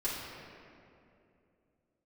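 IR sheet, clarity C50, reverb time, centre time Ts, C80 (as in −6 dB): −0.5 dB, 2.7 s, 126 ms, 1.5 dB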